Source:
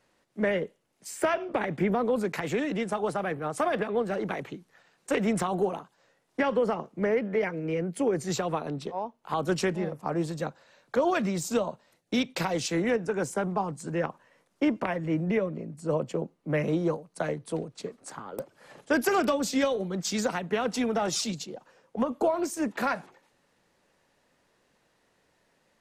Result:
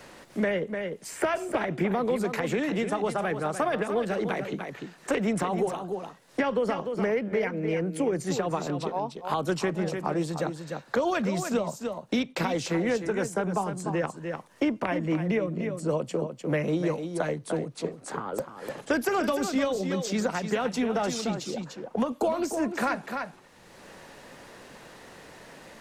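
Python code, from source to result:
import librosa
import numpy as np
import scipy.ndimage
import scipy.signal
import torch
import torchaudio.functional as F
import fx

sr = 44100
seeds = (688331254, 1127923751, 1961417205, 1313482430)

y = x + 10.0 ** (-10.0 / 20.0) * np.pad(x, (int(298 * sr / 1000.0), 0))[:len(x)]
y = fx.band_squash(y, sr, depth_pct=70)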